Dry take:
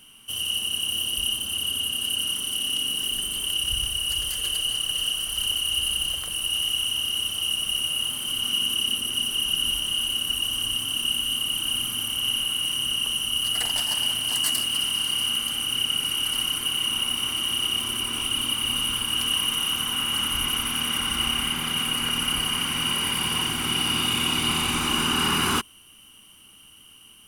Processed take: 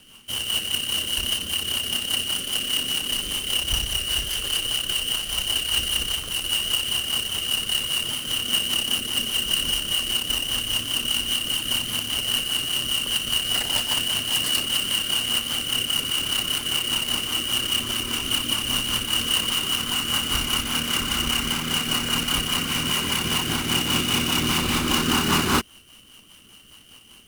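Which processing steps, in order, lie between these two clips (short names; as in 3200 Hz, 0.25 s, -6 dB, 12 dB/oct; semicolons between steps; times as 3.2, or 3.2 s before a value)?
half-waves squared off; rotary speaker horn 5 Hz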